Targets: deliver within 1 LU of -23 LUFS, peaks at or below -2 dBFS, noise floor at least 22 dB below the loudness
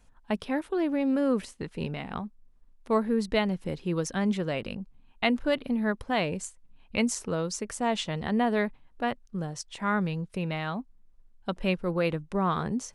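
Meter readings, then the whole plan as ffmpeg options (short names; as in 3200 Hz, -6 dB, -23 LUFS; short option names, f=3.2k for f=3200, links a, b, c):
loudness -29.5 LUFS; peak -12.0 dBFS; loudness target -23.0 LUFS
-> -af "volume=6.5dB"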